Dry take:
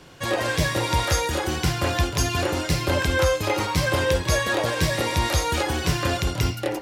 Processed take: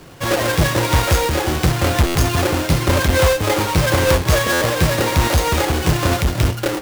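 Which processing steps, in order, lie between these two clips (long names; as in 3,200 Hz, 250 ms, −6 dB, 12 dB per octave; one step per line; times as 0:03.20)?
each half-wave held at its own peak
buffer that repeats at 0:02.06/0:04.52, samples 512, times 7
level +1.5 dB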